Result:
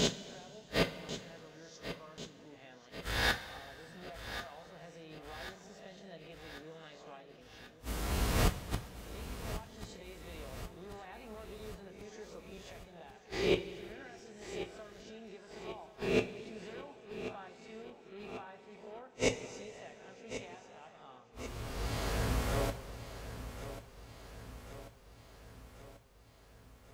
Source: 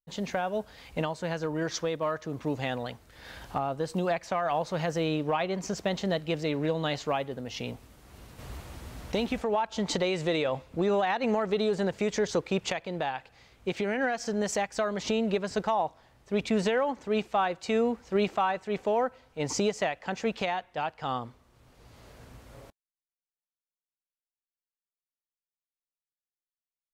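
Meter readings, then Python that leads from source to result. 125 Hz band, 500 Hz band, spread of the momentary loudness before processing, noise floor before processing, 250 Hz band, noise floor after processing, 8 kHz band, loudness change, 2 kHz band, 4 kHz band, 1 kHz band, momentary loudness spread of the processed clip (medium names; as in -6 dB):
-4.5 dB, -11.5 dB, 9 LU, under -85 dBFS, -11.5 dB, -58 dBFS, -5.0 dB, -10.0 dB, -6.0 dB, -4.5 dB, -14.0 dB, 20 LU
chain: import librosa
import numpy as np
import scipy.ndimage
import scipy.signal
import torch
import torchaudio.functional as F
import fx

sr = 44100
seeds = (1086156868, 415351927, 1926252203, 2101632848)

y = fx.spec_swells(x, sr, rise_s=0.69)
y = fx.gate_flip(y, sr, shuts_db=-31.0, range_db=-39)
y = fx.echo_feedback(y, sr, ms=1089, feedback_pct=59, wet_db=-12)
y = fx.rev_double_slope(y, sr, seeds[0], early_s=0.21, late_s=2.6, knee_db=-18, drr_db=4.5)
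y = y * 10.0 ** (13.5 / 20.0)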